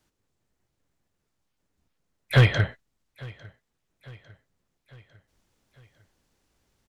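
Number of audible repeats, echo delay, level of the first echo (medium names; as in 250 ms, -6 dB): 3, 851 ms, -23.0 dB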